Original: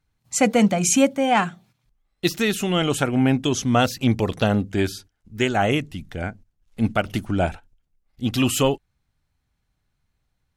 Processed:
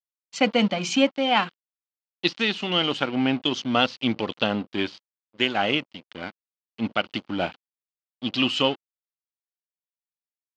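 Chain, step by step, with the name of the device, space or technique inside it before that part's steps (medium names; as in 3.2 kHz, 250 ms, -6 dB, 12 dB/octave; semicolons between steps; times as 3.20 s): blown loudspeaker (crossover distortion -34.5 dBFS; cabinet simulation 240–4700 Hz, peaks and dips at 410 Hz -5 dB, 670 Hz -4 dB, 1.7 kHz -3 dB, 3 kHz +7 dB, 4.5 kHz +5 dB)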